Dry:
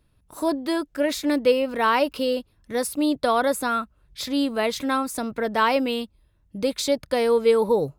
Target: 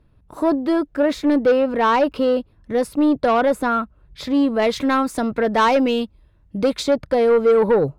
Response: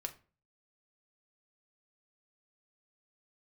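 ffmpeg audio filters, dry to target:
-af "asetnsamples=n=441:p=0,asendcmd='4.62 lowpass f 2400;6.83 lowpass f 1300',lowpass=f=1.2k:p=1,asoftclip=type=tanh:threshold=-18dB,volume=8dB"

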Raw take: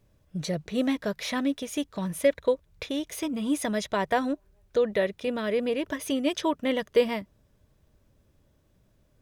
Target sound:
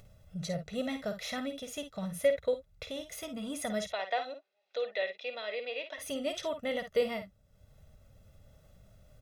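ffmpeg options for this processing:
-filter_complex "[0:a]aecho=1:1:1.5:0.74,acompressor=mode=upward:threshold=-39dB:ratio=2.5,asplit=3[a][b][c];[a]afade=t=out:st=3.9:d=0.02[d];[b]highpass=f=400:w=0.5412,highpass=f=400:w=1.3066,equalizer=f=430:t=q:w=4:g=-5,equalizer=f=620:t=q:w=4:g=-3,equalizer=f=1.3k:t=q:w=4:g=-6,equalizer=f=2.5k:t=q:w=4:g=7,equalizer=f=3.8k:t=q:w=4:g=6,lowpass=f=5.2k:w=0.5412,lowpass=f=5.2k:w=1.3066,afade=t=in:st=3.9:d=0.02,afade=t=out:st=5.97:d=0.02[e];[c]afade=t=in:st=5.97:d=0.02[f];[d][e][f]amix=inputs=3:normalize=0,aecho=1:1:52|63:0.335|0.168,volume=-8dB"

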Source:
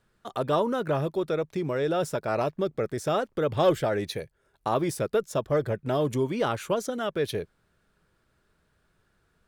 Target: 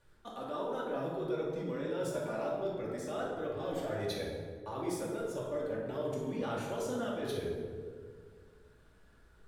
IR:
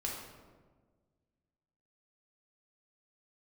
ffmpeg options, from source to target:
-filter_complex "[0:a]areverse,acompressor=threshold=-37dB:ratio=16,areverse,flanger=delay=2:depth=2.2:regen=-24:speed=1.5:shape=sinusoidal[a];[1:a]atrim=start_sample=2205,asetrate=32634,aresample=44100[b];[a][b]afir=irnorm=-1:irlink=0,volume=3.5dB"

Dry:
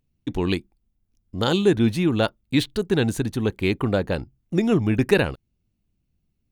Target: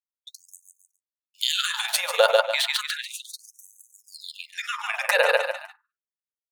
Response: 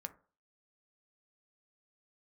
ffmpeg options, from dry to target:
-filter_complex "[0:a]asettb=1/sr,asplit=3[a][b][c];[a]atrim=end=2.974[d];[b]atrim=start=2.97:end=3.43,asetpts=PTS-STARTPTS,afade=t=in:d=0.004:c=qsin,afade=t=out:st=0.456:d=0.004:c=qsin,acompressor=threshold=-31dB:ratio=6[e];[c]atrim=start=3.426[f];[d][e]acrossfade=d=0.004:c1=hsin:c2=qsin[g];[g][f]acrossfade=d=0.004:c1=qsin:c2=hsin,aecho=1:1:140|280|420|560|700:0.422|0.169|0.0675|0.027|0.0108,agate=range=-42dB:threshold=-42dB:ratio=16:detection=peak,asettb=1/sr,asplit=3[h][i][j];[h]atrim=end=1.364[k];[i]atrim=start=1.36:end=2.39,asetpts=PTS-STARTPTS,afade=t=in:d=0.004:c=qsin,afade=t=out:st=1.026:d=0.004:c=qsin,highshelf=f=7.2k:g=11[l];[j]atrim=start=2.386[m];[k][l]acrossfade=d=0.004:c1=hsin:c2=qsin[n];[n][m]acrossfade=d=0.004:c1=qsin:c2=hsin,asettb=1/sr,asplit=3[o][p][q];[o]atrim=end=4.124[r];[p]atrim=start=4.12:end=4.6,asetpts=PTS-STARTPTS,afade=t=in:d=0.004:c=qsin,afade=t=out:st=0.476:d=0.004:c=qsin,acontrast=75[s];[q]atrim=start=4.596[t];[r][s]acrossfade=d=0.004:c1=hsin:c2=qsin[u];[u][t]acrossfade=d=0.004:c1=qsin:c2=hsin[v];[1:a]atrim=start_sample=2205,afade=t=out:st=0.31:d=0.01,atrim=end_sample=14112[w];[v][w]afir=irnorm=-1:irlink=0,tremolo=f=20:d=0.621,alimiter=level_in=18.5dB:limit=-1dB:release=50:level=0:latency=1,afftfilt=real='re*gte(b*sr/1024,450*pow(6100/450,0.5+0.5*sin(2*PI*0.33*pts/sr)))':imag='im*gte(b*sr/1024,450*pow(6100/450,0.5+0.5*sin(2*PI*0.33*pts/sr)))':win_size=1024:overlap=0.75,volume=-3dB"

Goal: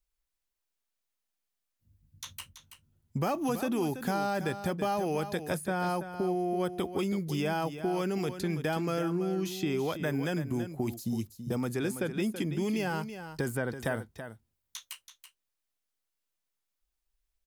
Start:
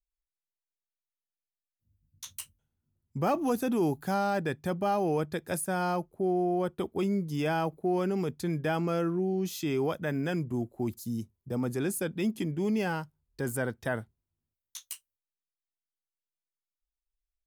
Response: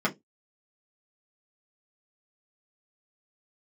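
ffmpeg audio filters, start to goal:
-filter_complex "[0:a]acrossover=split=1500|3800[a][b][c];[a]acompressor=threshold=-37dB:ratio=4[d];[b]acompressor=threshold=-50dB:ratio=4[e];[c]acompressor=threshold=-53dB:ratio=4[f];[d][e][f]amix=inputs=3:normalize=0,aecho=1:1:330:0.299,volume=7dB"

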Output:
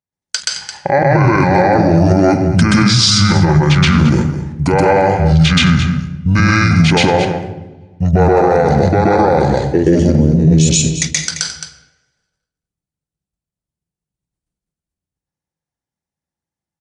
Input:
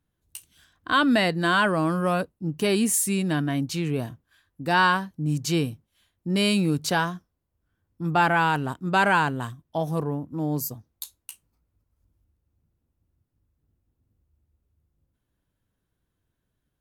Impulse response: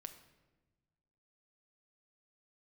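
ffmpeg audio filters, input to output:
-filter_complex "[0:a]agate=range=-33dB:threshold=-51dB:ratio=3:detection=peak,highpass=220,acompressor=threshold=-35dB:ratio=2.5,asetrate=23361,aresample=44100,atempo=1.88775,aecho=1:1:217:0.178,asplit=2[a][b];[1:a]atrim=start_sample=2205,asetrate=48510,aresample=44100,adelay=127[c];[b][c]afir=irnorm=-1:irlink=0,volume=10.5dB[d];[a][d]amix=inputs=2:normalize=0,alimiter=level_in=23.5dB:limit=-1dB:release=50:level=0:latency=1,volume=-1dB"

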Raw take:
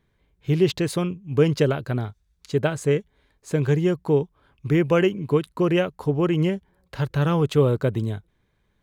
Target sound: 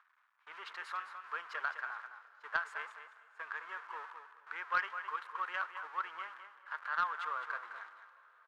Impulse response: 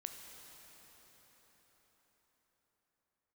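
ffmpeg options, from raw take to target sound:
-filter_complex "[0:a]aeval=exprs='val(0)+0.5*0.0447*sgn(val(0))':c=same,agate=range=-27dB:threshold=-29dB:ratio=16:detection=peak,aderivative,acompressor=mode=upward:threshold=-56dB:ratio=2.5,asuperpass=centerf=1200:order=4:qfactor=2,aecho=1:1:219|438|657:0.355|0.0674|0.0128,asplit=2[a][b];[1:a]atrim=start_sample=2205,asetrate=36162,aresample=44100[c];[b][c]afir=irnorm=-1:irlink=0,volume=-11dB[d];[a][d]amix=inputs=2:normalize=0,asetrate=45938,aresample=44100,aeval=exprs='0.0282*(cos(1*acos(clip(val(0)/0.0282,-1,1)))-cos(1*PI/2))+0.00224*(cos(2*acos(clip(val(0)/0.0282,-1,1)))-cos(2*PI/2))+0.00282*(cos(3*acos(clip(val(0)/0.0282,-1,1)))-cos(3*PI/2))+0.000631*(cos(4*acos(clip(val(0)/0.0282,-1,1)))-cos(4*PI/2))':c=same,volume=13dB"

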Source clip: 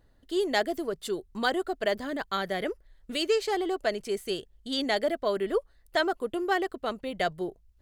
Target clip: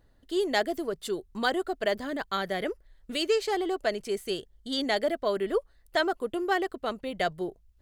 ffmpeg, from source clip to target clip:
-filter_complex "[0:a]asettb=1/sr,asplit=3[a][b][c];[a]atrim=end=4.384[d];[b]atrim=start=4.38:end=4.86,asetpts=PTS-STARTPTS,afade=t=in:d=0.004:c=qsin,afade=t=out:st=0.476:d=0.004:c=qsin,bandreject=f=2.6k:w=7.8[e];[c]atrim=start=4.856[f];[d][e]acrossfade=d=0.004:c1=hsin:c2=qsin[g];[g][f]acrossfade=d=0.004:c1=qsin:c2=hsin"

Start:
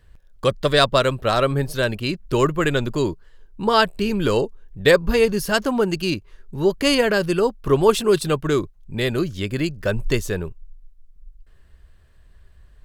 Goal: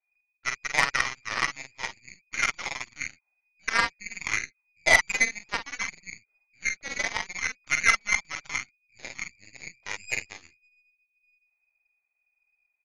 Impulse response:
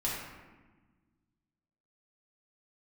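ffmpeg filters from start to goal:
-filter_complex "[0:a]asplit=2[a][b];[b]adelay=48,volume=-2dB[c];[a][c]amix=inputs=2:normalize=0,lowpass=f=2.1k:t=q:w=0.5098,lowpass=f=2.1k:t=q:w=0.6013,lowpass=f=2.1k:t=q:w=0.9,lowpass=f=2.1k:t=q:w=2.563,afreqshift=-2500,aeval=exprs='1.06*(cos(1*acos(clip(val(0)/1.06,-1,1)))-cos(1*PI/2))+0.188*(cos(2*acos(clip(val(0)/1.06,-1,1)))-cos(2*PI/2))+0.0944*(cos(3*acos(clip(val(0)/1.06,-1,1)))-cos(3*PI/2))+0.119*(cos(7*acos(clip(val(0)/1.06,-1,1)))-cos(7*PI/2))':c=same,volume=-4.5dB"

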